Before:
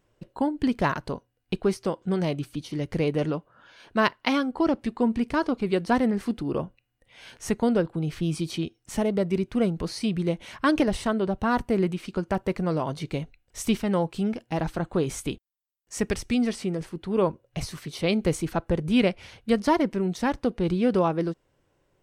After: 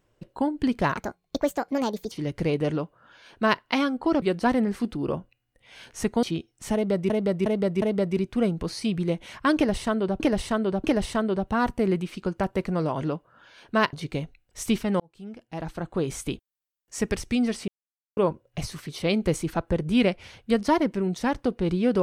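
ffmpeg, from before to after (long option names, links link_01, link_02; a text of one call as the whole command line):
ffmpeg -i in.wav -filter_complex "[0:a]asplit=15[link_01][link_02][link_03][link_04][link_05][link_06][link_07][link_08][link_09][link_10][link_11][link_12][link_13][link_14][link_15];[link_01]atrim=end=0.974[link_16];[link_02]atrim=start=0.97:end=2.66,asetpts=PTS-STARTPTS,asetrate=64827,aresample=44100[link_17];[link_03]atrim=start=2.656:end=4.762[link_18];[link_04]atrim=start=5.678:end=7.692[link_19];[link_05]atrim=start=8.498:end=9.372[link_20];[link_06]atrim=start=9.008:end=9.372[link_21];[link_07]atrim=start=9.008:end=9.372[link_22];[link_08]atrim=start=9.008:end=11.392[link_23];[link_09]atrim=start=10.748:end=11.392[link_24];[link_10]atrim=start=10.748:end=12.922[link_25];[link_11]atrim=start=3.228:end=4.152[link_26];[link_12]atrim=start=12.918:end=13.99,asetpts=PTS-STARTPTS,afade=type=out:start_time=1.068:duration=0.004:curve=hsin[link_27];[link_13]atrim=start=13.99:end=16.67,asetpts=PTS-STARTPTS,afade=type=in:duration=1.24,afade=type=out:start_time=2.676:duration=0.004:curve=hsin[link_28];[link_14]atrim=start=16.67:end=17.16,asetpts=PTS-STARTPTS,volume=0[link_29];[link_15]atrim=start=17.16,asetpts=PTS-STARTPTS,afade=type=in:duration=0.004:curve=hsin[link_30];[link_16][link_17]acrossfade=duration=0.004:curve1=hsin:curve2=hsin[link_31];[link_31][link_18]acrossfade=duration=0.004:curve1=hsin:curve2=hsin[link_32];[link_32][link_19]acrossfade=duration=0.004:curve1=hsin:curve2=hsin[link_33];[link_33][link_20]acrossfade=duration=0.004:curve1=hsin:curve2=hsin[link_34];[link_34][link_21]acrossfade=duration=0.004:curve1=hsin:curve2=hsin[link_35];[link_35][link_22]acrossfade=duration=0.004:curve1=hsin:curve2=hsin[link_36];[link_36][link_23]acrossfade=duration=0.004:curve1=hsin:curve2=hsin[link_37];[link_37][link_24]acrossfade=duration=0.004:curve1=hsin:curve2=hsin[link_38];[link_38][link_25]acrossfade=duration=0.004:curve1=hsin:curve2=hsin[link_39];[link_39][link_26]acrossfade=duration=0.004:curve1=hsin:curve2=hsin[link_40];[link_27][link_28][link_29][link_30]concat=n=4:v=0:a=1[link_41];[link_40][link_41]acrossfade=duration=0.004:curve1=hsin:curve2=hsin" out.wav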